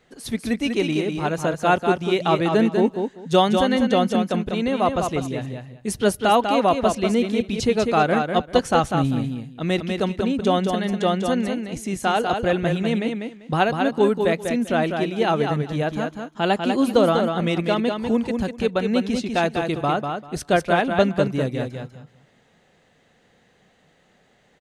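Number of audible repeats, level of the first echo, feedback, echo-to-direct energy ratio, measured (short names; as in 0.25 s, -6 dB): 2, -5.5 dB, 18%, -5.5 dB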